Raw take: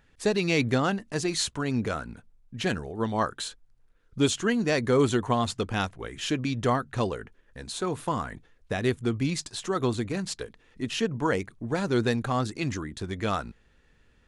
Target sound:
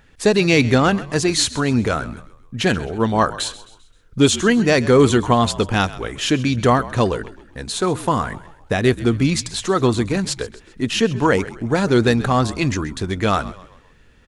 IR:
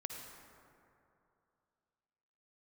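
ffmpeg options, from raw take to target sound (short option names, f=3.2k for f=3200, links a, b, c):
-filter_complex "[0:a]asplit=5[a][b][c][d][e];[b]adelay=131,afreqshift=-54,volume=-17.5dB[f];[c]adelay=262,afreqshift=-108,volume=-24.8dB[g];[d]adelay=393,afreqshift=-162,volume=-32.2dB[h];[e]adelay=524,afreqshift=-216,volume=-39.5dB[i];[a][f][g][h][i]amix=inputs=5:normalize=0,acontrast=78,volume=3dB"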